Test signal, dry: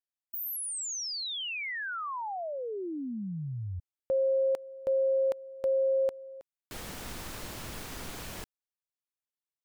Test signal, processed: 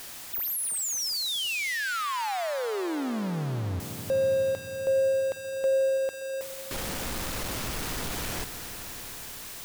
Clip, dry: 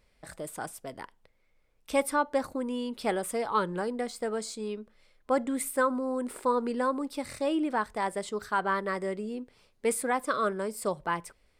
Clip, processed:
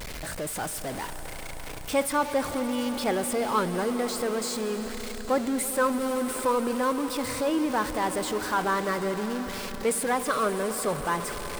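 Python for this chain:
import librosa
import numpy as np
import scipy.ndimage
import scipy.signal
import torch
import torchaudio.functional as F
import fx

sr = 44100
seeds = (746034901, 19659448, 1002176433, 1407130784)

y = x + 0.5 * 10.0 ** (-31.0 / 20.0) * np.sign(x)
y = fx.echo_swell(y, sr, ms=82, loudest=5, wet_db=-18.0)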